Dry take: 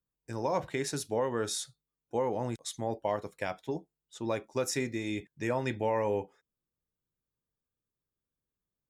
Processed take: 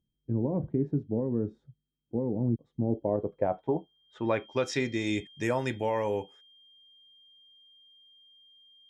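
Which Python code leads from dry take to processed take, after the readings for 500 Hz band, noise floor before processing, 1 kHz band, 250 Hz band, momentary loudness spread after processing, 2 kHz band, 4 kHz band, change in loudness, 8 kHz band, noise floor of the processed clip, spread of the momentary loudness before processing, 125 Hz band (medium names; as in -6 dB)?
+1.5 dB, under -85 dBFS, -1.0 dB, +6.5 dB, 5 LU, +1.5 dB, -1.0 dB, +2.5 dB, -9.5 dB, -82 dBFS, 8 LU, +7.0 dB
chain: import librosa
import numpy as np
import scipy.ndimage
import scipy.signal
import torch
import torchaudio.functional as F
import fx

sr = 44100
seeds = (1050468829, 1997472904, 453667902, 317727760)

y = x + 10.0 ** (-57.0 / 20.0) * np.sin(2.0 * np.pi * 3200.0 * np.arange(len(x)) / sr)
y = fx.filter_sweep_lowpass(y, sr, from_hz=250.0, to_hz=11000.0, start_s=2.81, end_s=5.44, q=1.3)
y = fx.rider(y, sr, range_db=5, speed_s=0.5)
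y = y * librosa.db_to_amplitude(5.0)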